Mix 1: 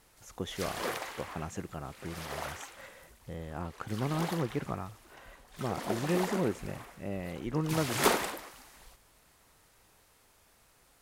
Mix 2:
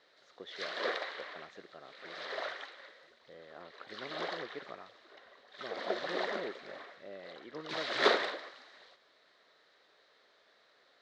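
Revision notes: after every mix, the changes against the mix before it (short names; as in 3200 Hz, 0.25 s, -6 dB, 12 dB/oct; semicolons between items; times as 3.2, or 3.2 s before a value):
speech -9.0 dB; master: add speaker cabinet 400–4400 Hz, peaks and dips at 420 Hz +3 dB, 590 Hz +5 dB, 880 Hz -7 dB, 1800 Hz +5 dB, 2600 Hz -6 dB, 3900 Hz +8 dB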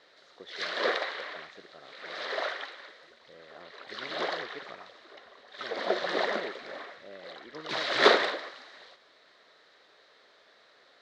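background +6.5 dB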